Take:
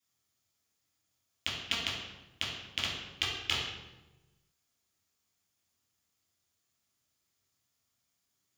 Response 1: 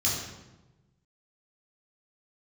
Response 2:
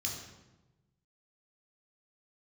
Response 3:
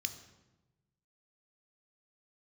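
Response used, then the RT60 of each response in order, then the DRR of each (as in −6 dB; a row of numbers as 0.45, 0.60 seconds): 1; 1.1, 1.1, 1.1 seconds; −6.5, −1.5, 8.5 decibels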